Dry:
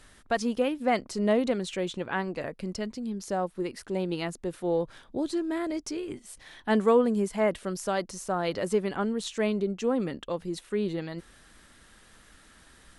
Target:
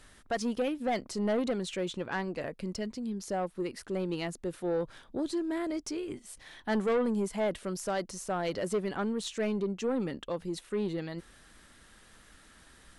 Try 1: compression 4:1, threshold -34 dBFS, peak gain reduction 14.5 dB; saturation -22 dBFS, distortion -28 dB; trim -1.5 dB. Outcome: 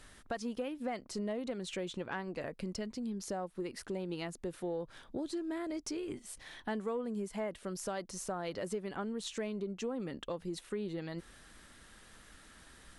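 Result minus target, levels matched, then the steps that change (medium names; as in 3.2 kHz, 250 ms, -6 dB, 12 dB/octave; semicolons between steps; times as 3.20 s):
compression: peak gain reduction +14.5 dB
remove: compression 4:1, threshold -34 dBFS, peak gain reduction 14.5 dB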